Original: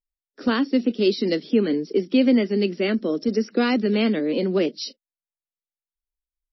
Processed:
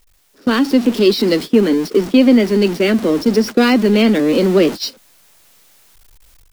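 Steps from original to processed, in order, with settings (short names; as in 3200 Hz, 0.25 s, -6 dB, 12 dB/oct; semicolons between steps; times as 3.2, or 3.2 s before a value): zero-crossing step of -29 dBFS; gate -27 dBFS, range -19 dB; AGC gain up to 8 dB; gain +1 dB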